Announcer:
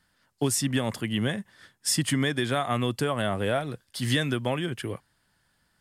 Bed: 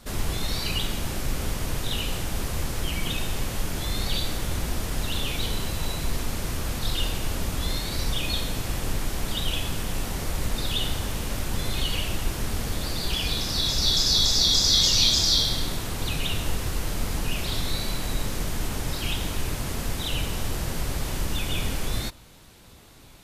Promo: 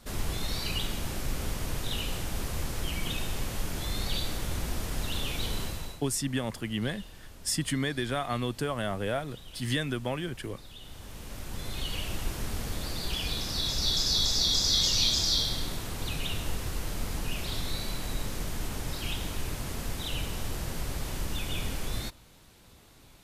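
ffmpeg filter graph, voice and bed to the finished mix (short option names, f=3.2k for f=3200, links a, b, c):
-filter_complex "[0:a]adelay=5600,volume=-4.5dB[a];[1:a]volume=11dB,afade=t=out:st=5.62:d=0.4:silence=0.149624,afade=t=in:st=10.81:d=1.39:silence=0.16788[b];[a][b]amix=inputs=2:normalize=0"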